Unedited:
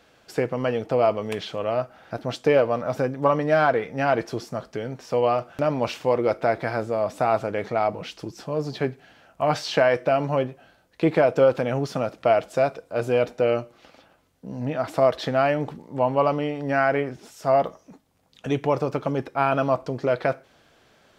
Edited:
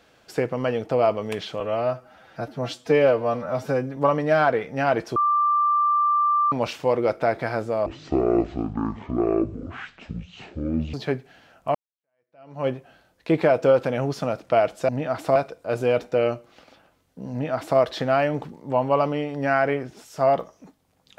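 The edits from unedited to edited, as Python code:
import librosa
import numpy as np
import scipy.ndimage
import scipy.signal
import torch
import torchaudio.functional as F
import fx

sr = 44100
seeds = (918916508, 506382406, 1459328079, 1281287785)

y = fx.edit(x, sr, fx.stretch_span(start_s=1.6, length_s=1.58, factor=1.5),
    fx.bleep(start_s=4.37, length_s=1.36, hz=1180.0, db=-17.0),
    fx.speed_span(start_s=7.07, length_s=1.6, speed=0.52),
    fx.fade_in_span(start_s=9.48, length_s=0.92, curve='exp'),
    fx.duplicate(start_s=14.58, length_s=0.47, to_s=12.62), tone=tone)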